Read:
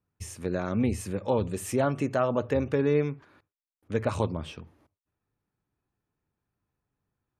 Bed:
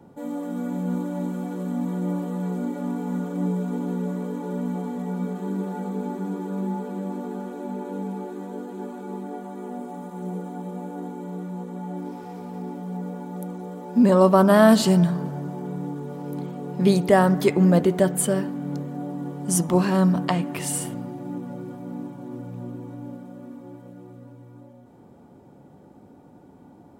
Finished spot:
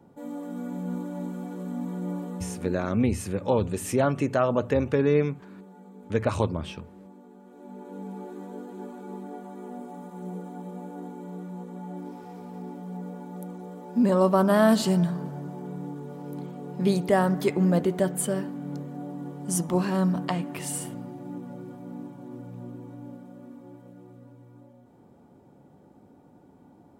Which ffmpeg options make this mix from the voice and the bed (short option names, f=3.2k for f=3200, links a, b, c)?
-filter_complex "[0:a]adelay=2200,volume=2.5dB[a];[1:a]volume=8dB,afade=t=out:st=2.25:d=0.73:silence=0.223872,afade=t=in:st=7.42:d=0.91:silence=0.211349[b];[a][b]amix=inputs=2:normalize=0"